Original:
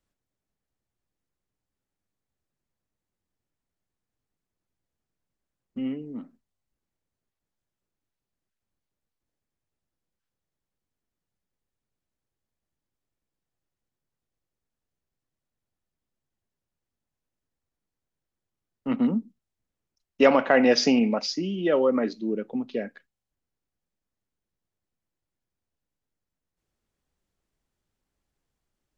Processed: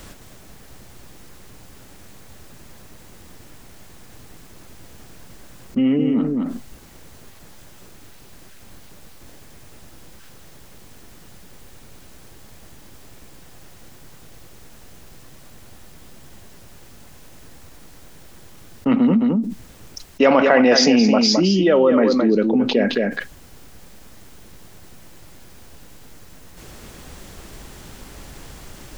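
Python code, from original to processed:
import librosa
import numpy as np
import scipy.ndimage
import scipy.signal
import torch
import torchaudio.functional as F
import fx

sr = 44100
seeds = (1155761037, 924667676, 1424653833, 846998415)

p1 = x + fx.echo_single(x, sr, ms=216, db=-9.5, dry=0)
p2 = fx.env_flatten(p1, sr, amount_pct=70)
y = p2 * 10.0 ** (2.0 / 20.0)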